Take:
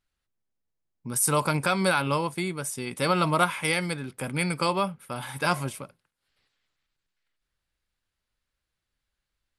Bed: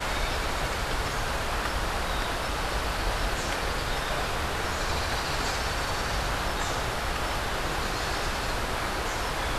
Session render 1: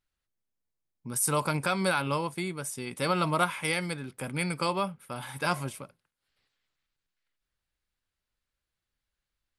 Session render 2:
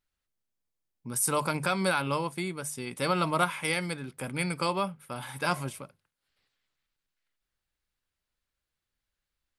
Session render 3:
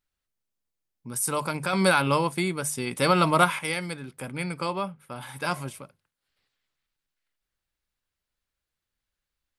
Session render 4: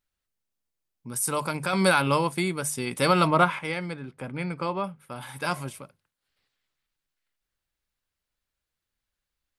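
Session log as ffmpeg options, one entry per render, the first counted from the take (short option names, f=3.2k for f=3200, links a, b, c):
-af "volume=-3.5dB"
-af "bandreject=f=50:t=h:w=6,bandreject=f=100:t=h:w=6,bandreject=f=150:t=h:w=6"
-filter_complex "[0:a]asettb=1/sr,asplit=3[a][b][c];[a]atrim=end=1.734[d];[b]atrim=start=1.73:end=3.59,asetpts=PTS-STARTPTS,afade=t=in:d=0.004:c=qsin,afade=t=out:st=1.856:d=0.004:c=qsin,acontrast=66[e];[c]atrim=start=3.586[f];[d][e]acrossfade=d=0.004:c1=hsin:c2=qsin[g];[g][f]acrossfade=d=0.004:c1=qsin:c2=hsin,asettb=1/sr,asplit=3[h][i][j];[h]atrim=end=4.264[k];[i]atrim=start=4.26:end=5.21,asetpts=PTS-STARTPTS,afade=t=in:d=0.004:c=qsin,afade=t=out:st=0.946:d=0.004:c=qsin,highshelf=f=3.8k:g=-5.5[l];[j]atrim=start=5.206[m];[k][l]acrossfade=d=0.004:c1=hsin:c2=qsin[n];[n][m]acrossfade=d=0.004:c1=qsin:c2=hsin"
-filter_complex "[0:a]asettb=1/sr,asplit=3[a][b][c];[a]atrim=end=3.274[d];[b]atrim=start=3.27:end=4.84,asetpts=PTS-STARTPTS,afade=t=in:d=0.004:c=qsin,afade=t=out:st=1.566:d=0.004:c=qsin,aemphasis=mode=reproduction:type=75fm[e];[c]atrim=start=4.836[f];[d][e]acrossfade=d=0.004:c1=hsin:c2=qsin[g];[g][f]acrossfade=d=0.004:c1=qsin:c2=hsin"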